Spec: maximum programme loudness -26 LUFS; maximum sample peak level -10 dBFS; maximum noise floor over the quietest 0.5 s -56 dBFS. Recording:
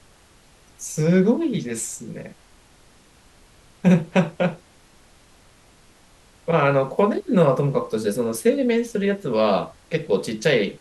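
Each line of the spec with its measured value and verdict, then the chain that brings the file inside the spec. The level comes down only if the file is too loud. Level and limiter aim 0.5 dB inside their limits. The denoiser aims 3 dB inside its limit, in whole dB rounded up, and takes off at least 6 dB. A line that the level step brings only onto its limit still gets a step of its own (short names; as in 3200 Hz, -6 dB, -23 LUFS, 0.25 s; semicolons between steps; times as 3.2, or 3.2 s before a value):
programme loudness -21.5 LUFS: fail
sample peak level -5.0 dBFS: fail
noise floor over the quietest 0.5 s -53 dBFS: fail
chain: gain -5 dB; limiter -10.5 dBFS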